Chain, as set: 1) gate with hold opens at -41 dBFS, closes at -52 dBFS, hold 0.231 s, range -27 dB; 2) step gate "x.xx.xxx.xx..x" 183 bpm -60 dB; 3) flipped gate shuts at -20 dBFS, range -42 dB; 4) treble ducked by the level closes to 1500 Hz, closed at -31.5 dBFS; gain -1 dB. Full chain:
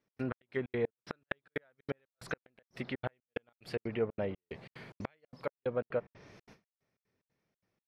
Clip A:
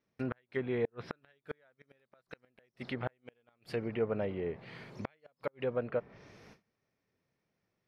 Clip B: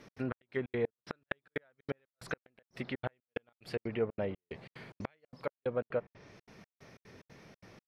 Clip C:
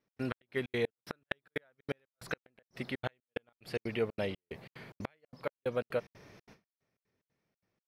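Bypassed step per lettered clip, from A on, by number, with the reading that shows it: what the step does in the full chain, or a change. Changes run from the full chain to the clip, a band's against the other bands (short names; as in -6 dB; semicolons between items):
2, 2 kHz band -3.0 dB; 1, momentary loudness spread change +9 LU; 4, 4 kHz band +5.5 dB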